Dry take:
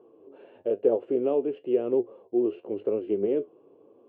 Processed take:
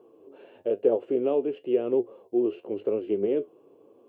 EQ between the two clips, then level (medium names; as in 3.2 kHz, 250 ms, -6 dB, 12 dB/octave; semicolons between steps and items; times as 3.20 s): treble shelf 2.7 kHz +8 dB; 0.0 dB